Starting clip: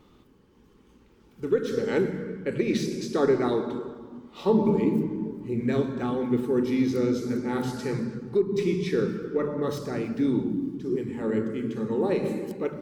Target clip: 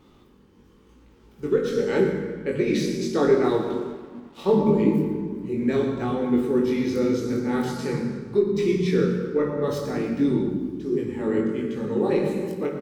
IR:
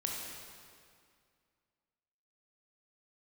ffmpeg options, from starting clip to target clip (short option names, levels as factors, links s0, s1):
-filter_complex "[0:a]asplit=2[s0][s1];[s1]adelay=116.6,volume=0.251,highshelf=f=4000:g=-2.62[s2];[s0][s2]amix=inputs=2:normalize=0,flanger=delay=19:depth=2.3:speed=0.83,asettb=1/sr,asplit=3[s3][s4][s5];[s3]atrim=end=3.444[s6];[s4]atrim=start=3.44:end=4.6,asetpts=PTS-STARTPTS,afade=t=in:d=0.004:c=qsin,afade=t=out:st=1.156:d=0.004:c=qsin,aeval=exprs='sgn(val(0))*max(abs(val(0))-0.002,0)':c=same[s7];[s5]atrim=start=4.596[s8];[s6][s7]acrossfade=d=0.004:c1=hsin:c2=qsin[s9];[s9][s8]acrossfade=d=0.004:c1=qsin:c2=hsin,asplit=2[s10][s11];[1:a]atrim=start_sample=2205,asetrate=83790,aresample=44100,adelay=34[s12];[s11][s12]afir=irnorm=-1:irlink=0,volume=0.596[s13];[s10][s13]amix=inputs=2:normalize=0,volume=1.78"